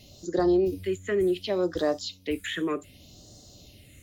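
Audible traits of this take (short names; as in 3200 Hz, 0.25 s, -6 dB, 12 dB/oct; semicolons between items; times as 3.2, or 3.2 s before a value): phasing stages 4, 0.67 Hz, lowest notch 790–2300 Hz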